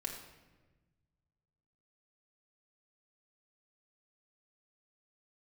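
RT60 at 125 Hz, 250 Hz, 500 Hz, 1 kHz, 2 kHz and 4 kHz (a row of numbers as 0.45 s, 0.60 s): 2.4 s, 1.7 s, 1.4 s, 1.1 s, 1.1 s, 0.85 s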